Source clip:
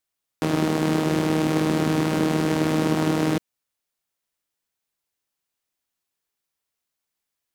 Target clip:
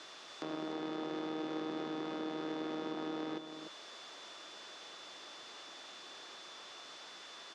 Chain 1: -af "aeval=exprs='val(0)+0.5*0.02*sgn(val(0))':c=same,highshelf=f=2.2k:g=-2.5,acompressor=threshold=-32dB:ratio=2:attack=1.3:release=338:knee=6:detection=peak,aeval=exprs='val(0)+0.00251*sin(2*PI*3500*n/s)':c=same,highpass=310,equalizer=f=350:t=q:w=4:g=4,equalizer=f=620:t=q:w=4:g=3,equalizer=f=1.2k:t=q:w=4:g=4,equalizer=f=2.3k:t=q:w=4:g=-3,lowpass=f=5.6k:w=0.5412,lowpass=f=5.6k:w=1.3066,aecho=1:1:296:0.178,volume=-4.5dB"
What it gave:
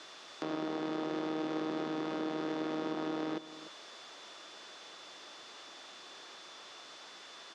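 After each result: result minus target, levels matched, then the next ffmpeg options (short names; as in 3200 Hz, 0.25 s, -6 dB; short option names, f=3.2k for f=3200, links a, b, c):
echo-to-direct -6.5 dB; compressor: peak gain reduction -4 dB
-af "aeval=exprs='val(0)+0.5*0.02*sgn(val(0))':c=same,highshelf=f=2.2k:g=-2.5,acompressor=threshold=-32dB:ratio=2:attack=1.3:release=338:knee=6:detection=peak,aeval=exprs='val(0)+0.00251*sin(2*PI*3500*n/s)':c=same,highpass=310,equalizer=f=350:t=q:w=4:g=4,equalizer=f=620:t=q:w=4:g=3,equalizer=f=1.2k:t=q:w=4:g=4,equalizer=f=2.3k:t=q:w=4:g=-3,lowpass=f=5.6k:w=0.5412,lowpass=f=5.6k:w=1.3066,aecho=1:1:296:0.376,volume=-4.5dB"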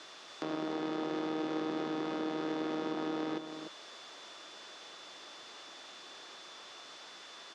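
compressor: peak gain reduction -4 dB
-af "aeval=exprs='val(0)+0.5*0.02*sgn(val(0))':c=same,highshelf=f=2.2k:g=-2.5,acompressor=threshold=-40dB:ratio=2:attack=1.3:release=338:knee=6:detection=peak,aeval=exprs='val(0)+0.00251*sin(2*PI*3500*n/s)':c=same,highpass=310,equalizer=f=350:t=q:w=4:g=4,equalizer=f=620:t=q:w=4:g=3,equalizer=f=1.2k:t=q:w=4:g=4,equalizer=f=2.3k:t=q:w=4:g=-3,lowpass=f=5.6k:w=0.5412,lowpass=f=5.6k:w=1.3066,aecho=1:1:296:0.376,volume=-4.5dB"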